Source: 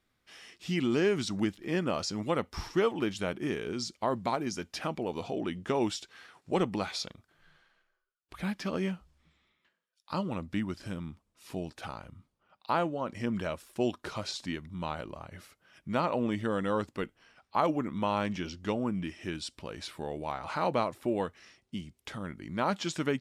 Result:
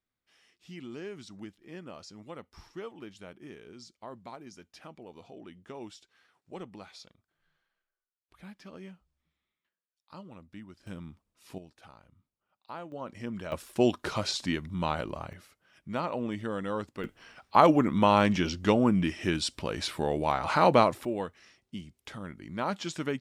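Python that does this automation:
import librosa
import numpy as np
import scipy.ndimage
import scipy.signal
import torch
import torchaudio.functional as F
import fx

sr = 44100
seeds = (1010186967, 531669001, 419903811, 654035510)

y = fx.gain(x, sr, db=fx.steps((0.0, -14.0), (10.87, -4.0), (11.58, -13.0), (12.92, -5.0), (13.52, 5.5), (15.33, -3.0), (17.04, 8.0), (21.05, -2.0)))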